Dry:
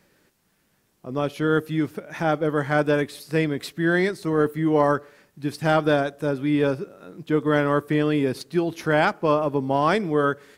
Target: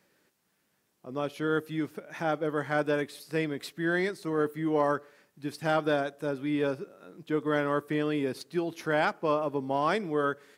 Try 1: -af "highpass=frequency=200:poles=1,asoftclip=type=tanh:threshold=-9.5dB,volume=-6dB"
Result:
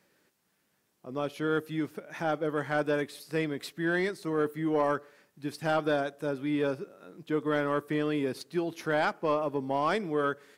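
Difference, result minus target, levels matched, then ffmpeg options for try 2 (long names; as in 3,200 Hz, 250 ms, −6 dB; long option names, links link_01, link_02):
soft clipping: distortion +15 dB
-af "highpass=frequency=200:poles=1,asoftclip=type=tanh:threshold=-1dB,volume=-6dB"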